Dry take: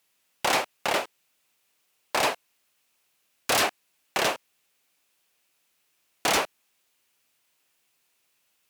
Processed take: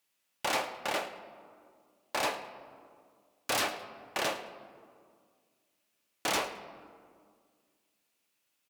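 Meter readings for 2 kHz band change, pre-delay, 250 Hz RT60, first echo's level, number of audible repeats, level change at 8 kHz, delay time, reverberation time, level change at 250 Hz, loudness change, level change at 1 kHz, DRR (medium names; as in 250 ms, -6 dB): -7.0 dB, 3 ms, 2.4 s, -17.0 dB, 1, -7.5 dB, 108 ms, 2.0 s, -5.5 dB, -7.0 dB, -6.5 dB, 7.0 dB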